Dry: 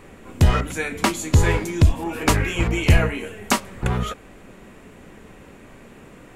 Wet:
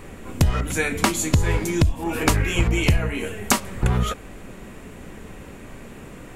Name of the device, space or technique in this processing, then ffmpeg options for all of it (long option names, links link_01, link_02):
ASMR close-microphone chain: -af "lowshelf=frequency=130:gain=6,acompressor=threshold=-18dB:ratio=8,highshelf=frequency=6100:gain=5,volume=3dB"